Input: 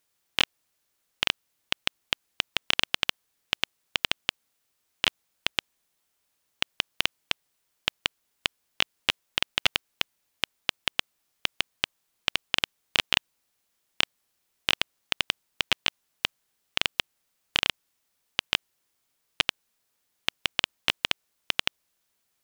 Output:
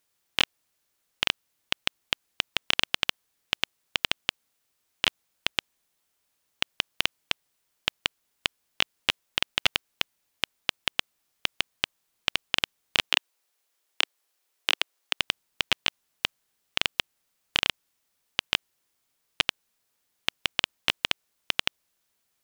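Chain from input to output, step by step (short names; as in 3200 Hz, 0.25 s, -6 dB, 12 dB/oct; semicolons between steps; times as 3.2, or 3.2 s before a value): 13.09–15.19 HPF 340 Hz 24 dB/oct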